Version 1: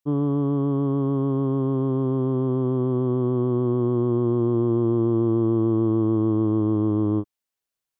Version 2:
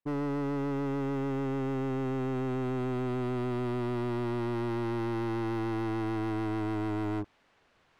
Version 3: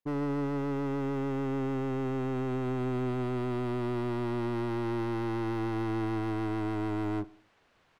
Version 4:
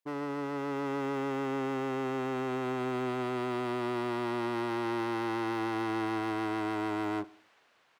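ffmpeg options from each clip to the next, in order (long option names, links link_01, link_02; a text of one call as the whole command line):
ffmpeg -i in.wav -af "lowpass=2100,areverse,acompressor=mode=upward:threshold=-42dB:ratio=2.5,areverse,volume=29dB,asoftclip=hard,volume=-29dB,volume=-1.5dB" out.wav
ffmpeg -i in.wav -af "aecho=1:1:63|126|189|252:0.0891|0.0481|0.026|0.014" out.wav
ffmpeg -i in.wav -af "highpass=frequency=620:poles=1,dynaudnorm=framelen=150:gausssize=9:maxgain=3.5dB,volume=2dB" out.wav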